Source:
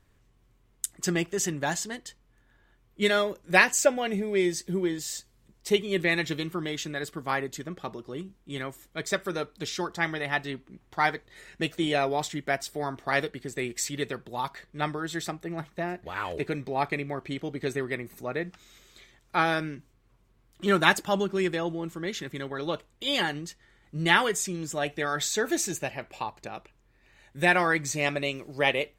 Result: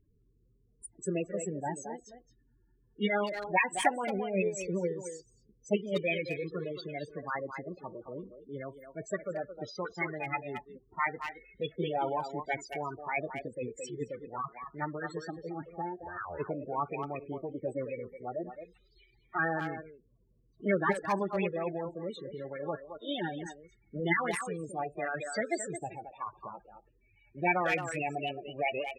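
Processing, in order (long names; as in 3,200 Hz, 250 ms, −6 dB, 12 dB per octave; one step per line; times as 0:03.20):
spectral peaks only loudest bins 16
far-end echo of a speakerphone 220 ms, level −8 dB
formants moved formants +4 semitones
level −4.5 dB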